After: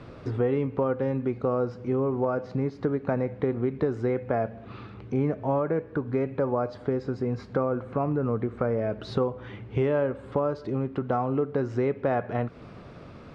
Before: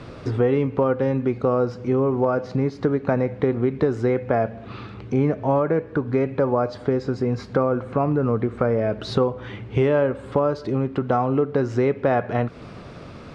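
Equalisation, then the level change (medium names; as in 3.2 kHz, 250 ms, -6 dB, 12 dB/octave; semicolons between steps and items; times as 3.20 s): treble shelf 4 kHz -7.5 dB; -5.5 dB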